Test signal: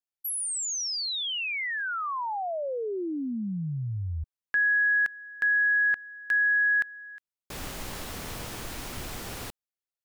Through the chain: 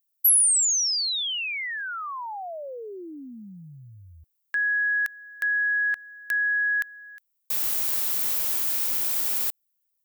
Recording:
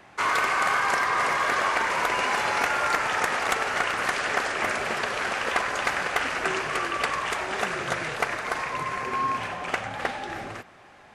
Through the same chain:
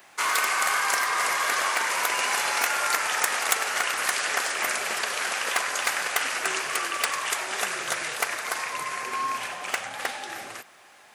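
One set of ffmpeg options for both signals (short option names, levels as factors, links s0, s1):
-af "aemphasis=mode=production:type=riaa,volume=0.75"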